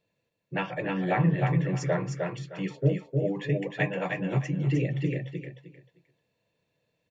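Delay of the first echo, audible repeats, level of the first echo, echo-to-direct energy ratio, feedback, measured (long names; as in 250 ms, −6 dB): 308 ms, 3, −4.0 dB, −4.0 dB, 23%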